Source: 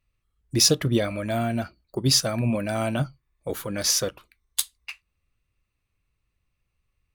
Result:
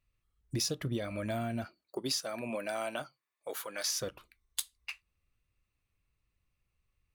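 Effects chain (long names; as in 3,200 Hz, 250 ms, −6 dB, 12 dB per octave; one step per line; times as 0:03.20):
0:01.64–0:03.98: high-pass filter 280 Hz → 750 Hz 12 dB per octave
downward compressor 4 to 1, threshold −28 dBFS, peak gain reduction 12.5 dB
level −4 dB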